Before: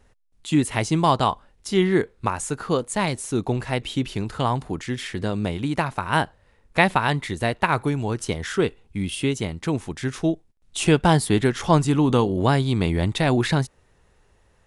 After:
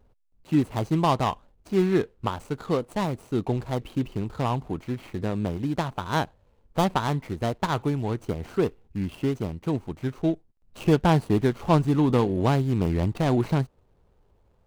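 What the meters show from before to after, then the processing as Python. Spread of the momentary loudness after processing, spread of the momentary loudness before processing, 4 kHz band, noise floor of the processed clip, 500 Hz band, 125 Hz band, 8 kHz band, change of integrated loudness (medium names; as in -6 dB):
9 LU, 9 LU, -8.0 dB, -64 dBFS, -2.5 dB, -2.0 dB, -13.0 dB, -3.0 dB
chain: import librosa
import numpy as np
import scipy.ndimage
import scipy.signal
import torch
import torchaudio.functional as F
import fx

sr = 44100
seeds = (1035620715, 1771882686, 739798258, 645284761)

y = scipy.signal.medfilt(x, 25)
y = y * 10.0 ** (-2.0 / 20.0)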